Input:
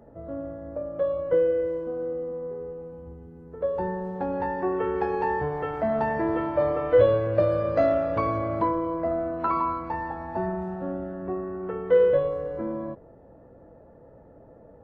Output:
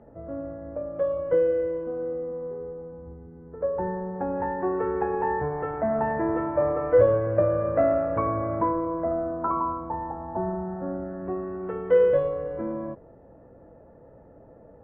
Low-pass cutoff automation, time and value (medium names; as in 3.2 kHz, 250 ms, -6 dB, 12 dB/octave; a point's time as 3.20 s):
low-pass 24 dB/octave
2.11 s 2.8 kHz
2.57 s 1.9 kHz
8.82 s 1.9 kHz
9.68 s 1.2 kHz
10.25 s 1.2 kHz
11.08 s 2 kHz
11.54 s 3 kHz